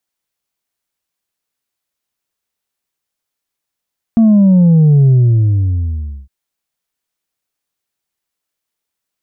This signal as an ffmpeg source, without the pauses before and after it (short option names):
-f lavfi -i "aevalsrc='0.531*clip((2.11-t)/1.2,0,1)*tanh(1.33*sin(2*PI*230*2.11/log(65/230)*(exp(log(65/230)*t/2.11)-1)))/tanh(1.33)':d=2.11:s=44100"